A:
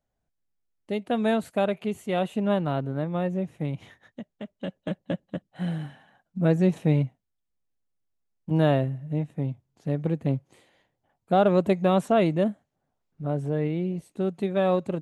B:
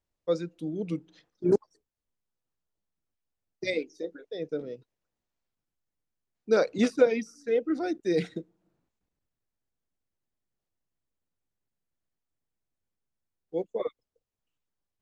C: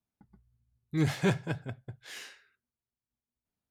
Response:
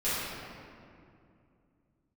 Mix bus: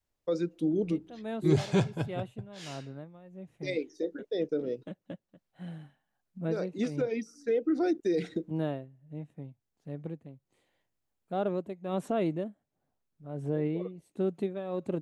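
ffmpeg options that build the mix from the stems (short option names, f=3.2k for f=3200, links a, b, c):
-filter_complex "[0:a]tremolo=f=1.4:d=0.8,volume=-4dB,afade=t=in:st=11.62:d=0.45:silence=0.375837,asplit=2[a][b];[1:a]volume=1.5dB[c];[2:a]lowpass=7.3k,equalizer=f=1.8k:t=o:w=0.77:g=-9,adelay=500,volume=1.5dB[d];[b]apad=whole_len=662099[e];[c][e]sidechaincompress=threshold=-44dB:ratio=8:attack=16:release=709[f];[a][f]amix=inputs=2:normalize=0,adynamicequalizer=threshold=0.00891:dfrequency=340:dqfactor=1.2:tfrequency=340:tqfactor=1.2:attack=5:release=100:ratio=0.375:range=3:mode=boostabove:tftype=bell,alimiter=limit=-20.5dB:level=0:latency=1:release=135,volume=0dB[g];[d][g]amix=inputs=2:normalize=0"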